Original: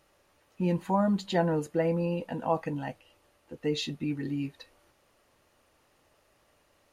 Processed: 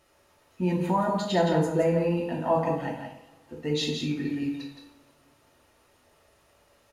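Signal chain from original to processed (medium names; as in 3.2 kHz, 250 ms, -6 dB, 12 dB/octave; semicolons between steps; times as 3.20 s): delay 169 ms -6 dB; reverberation, pre-delay 3 ms, DRR -0.5 dB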